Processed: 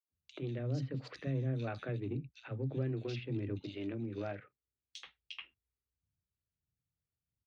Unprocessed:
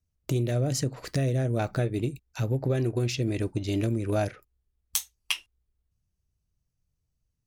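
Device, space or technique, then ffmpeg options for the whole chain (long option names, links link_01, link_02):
guitar amplifier with harmonic tremolo: -filter_complex "[0:a]acrossover=split=440[link_01][link_02];[link_01]aeval=exprs='val(0)*(1-0.5/2+0.5/2*cos(2*PI*1.5*n/s))':channel_layout=same[link_03];[link_02]aeval=exprs='val(0)*(1-0.5/2-0.5/2*cos(2*PI*1.5*n/s))':channel_layout=same[link_04];[link_03][link_04]amix=inputs=2:normalize=0,asoftclip=type=tanh:threshold=-18dB,highpass=89,equalizer=frequency=260:width_type=q:width=4:gain=3,equalizer=frequency=670:width_type=q:width=4:gain=-5,equalizer=frequency=950:width_type=q:width=4:gain=-7,lowpass=frequency=3900:width=0.5412,lowpass=frequency=3900:width=1.3066,asettb=1/sr,asplit=3[link_05][link_06][link_07];[link_05]atrim=end=0.954[link_08];[link_06]atrim=start=0.95:end=2,asetpts=PTS-STARTPTS,afade=type=in:duration=0.004:curve=qsin,afade=type=out:start_time=1.046:duration=0.004:curve=qsin,aemphasis=mode=production:type=50kf[link_09];[link_07]atrim=start=1.996[link_10];[link_08][link_09]acrossfade=duration=0.004:curve1=hsin:curve2=qsin[link_11];[link_11][link_10]acrossfade=duration=0.004:curve1=qsin:curve2=hsin,asettb=1/sr,asplit=3[link_12][link_13][link_14];[link_12]atrim=end=3.514[link_15];[link_13]atrim=start=3.51:end=4.96,asetpts=PTS-STARTPTS,afade=type=in:duration=0.004:curve=qsin,afade=type=out:start_time=1.446:duration=0.004:curve=qsin,highpass=frequency=170:poles=1[link_16];[link_14]atrim=start=4.956[link_17];[link_15][link_16]acrossfade=duration=0.004:curve1=hsin:curve2=qsin[link_18];[link_18][link_17]acrossfade=duration=0.004:curve1=qsin:curve2=hsin,acrossover=split=240|2900[link_19][link_20][link_21];[link_20]adelay=80[link_22];[link_19]adelay=110[link_23];[link_23][link_22][link_21]amix=inputs=3:normalize=0,volume=-6dB"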